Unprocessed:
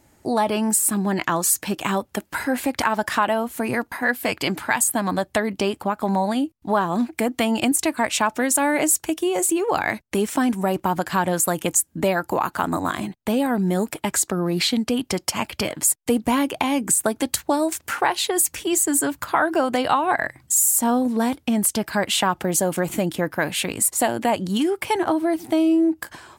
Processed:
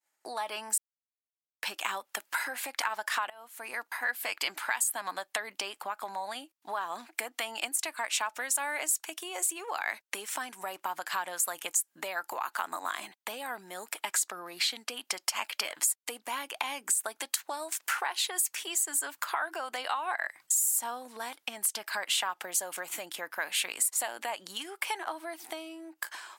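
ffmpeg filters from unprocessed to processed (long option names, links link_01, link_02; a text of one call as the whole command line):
ffmpeg -i in.wav -filter_complex "[0:a]asplit=4[link_01][link_02][link_03][link_04];[link_01]atrim=end=0.78,asetpts=PTS-STARTPTS,afade=type=out:start_time=0.776:duration=0.004:curve=hsin[link_05];[link_02]atrim=start=0.78:end=1.6,asetpts=PTS-STARTPTS,volume=0[link_06];[link_03]atrim=start=1.6:end=3.3,asetpts=PTS-STARTPTS,afade=type=in:duration=0.004:curve=hsin,afade=type=out:start_time=1.696:duration=0.004:curve=hsin:silence=0.0794328[link_07];[link_04]atrim=start=3.3,asetpts=PTS-STARTPTS,afade=type=in:duration=1.06:silence=0.0794328[link_08];[link_05][link_06][link_07][link_08]concat=n=4:v=0:a=1,agate=range=-33dB:threshold=-45dB:ratio=3:detection=peak,acompressor=threshold=-26dB:ratio=4,highpass=1000" out.wav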